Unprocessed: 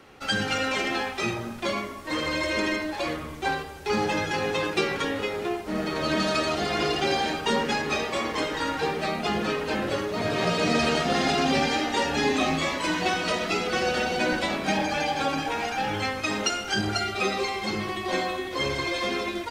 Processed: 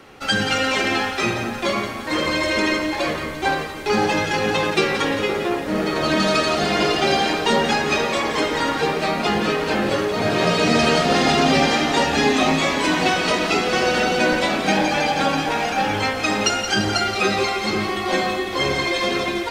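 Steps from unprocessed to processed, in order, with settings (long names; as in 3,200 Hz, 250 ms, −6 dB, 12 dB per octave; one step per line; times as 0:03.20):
parametric band 70 Hz −2.5 dB
on a send: echo with a time of its own for lows and highs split 1,900 Hz, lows 512 ms, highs 173 ms, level −9 dB
on the sum: level +6 dB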